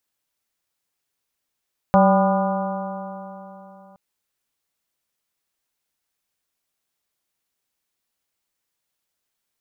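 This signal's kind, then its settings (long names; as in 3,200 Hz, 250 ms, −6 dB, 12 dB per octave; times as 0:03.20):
stiff-string partials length 2.02 s, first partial 190 Hz, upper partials −18/−1/−2/−6/−9.5/−17 dB, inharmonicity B 0.0035, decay 3.35 s, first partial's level −14 dB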